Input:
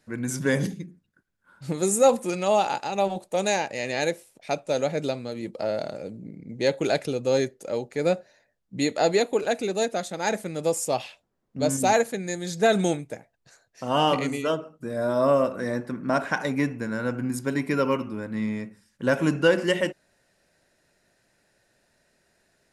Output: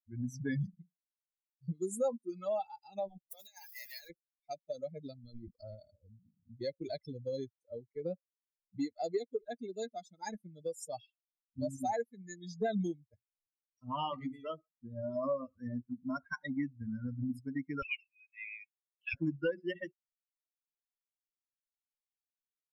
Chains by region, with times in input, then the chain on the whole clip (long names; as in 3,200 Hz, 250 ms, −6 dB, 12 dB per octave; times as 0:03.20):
0:03.31–0:04.10: spike at every zero crossing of −24 dBFS + parametric band 190 Hz −12.5 dB 3 octaves + compressor whose output falls as the input rises −29 dBFS, ratio −0.5
0:05.24–0:05.75: mu-law and A-law mismatch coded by A + transient designer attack +1 dB, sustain +9 dB + parametric band 5,600 Hz +2 dB 1.3 octaves
0:17.82–0:19.14: hard clipping −13.5 dBFS + high-pass with resonance 2,500 Hz, resonance Q 11
whole clip: spectral dynamics exaggerated over time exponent 3; spectral tilt −2.5 dB per octave; downward compressor 2.5 to 1, threshold −39 dBFS; level +1.5 dB